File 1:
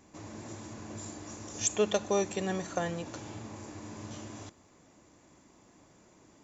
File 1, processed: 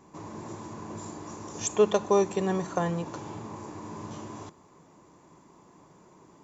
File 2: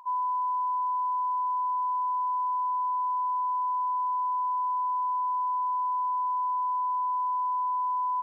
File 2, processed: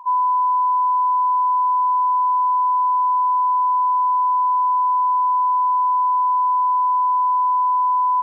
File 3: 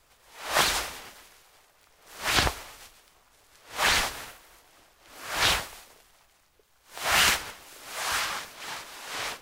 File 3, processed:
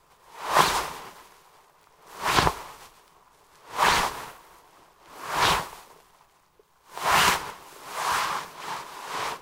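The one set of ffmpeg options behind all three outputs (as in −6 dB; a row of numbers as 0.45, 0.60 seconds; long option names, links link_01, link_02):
-af "equalizer=frequency=160:width_type=o:width=0.67:gain=10,equalizer=frequency=400:width_type=o:width=0.67:gain=8,equalizer=frequency=1000:width_type=o:width=0.67:gain=12,volume=-2dB"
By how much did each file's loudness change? +4.5, +10.5, +1.5 LU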